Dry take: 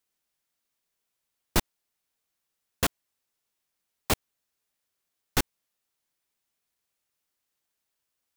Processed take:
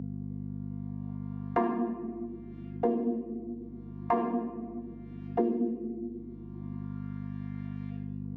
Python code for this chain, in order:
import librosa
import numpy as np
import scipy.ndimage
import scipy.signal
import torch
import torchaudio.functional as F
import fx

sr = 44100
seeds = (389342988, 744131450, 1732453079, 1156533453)

y = fx.chord_vocoder(x, sr, chord='bare fifth', root=58)
y = fx.filter_lfo_lowpass(y, sr, shape='saw_up', hz=0.38, low_hz=410.0, high_hz=2500.0, q=1.9)
y = fx.room_shoebox(y, sr, seeds[0], volume_m3=290.0, walls='mixed', distance_m=7.1)
y = fx.add_hum(y, sr, base_hz=50, snr_db=26)
y = fx.band_squash(y, sr, depth_pct=100)
y = F.gain(torch.from_numpy(y), -8.0).numpy()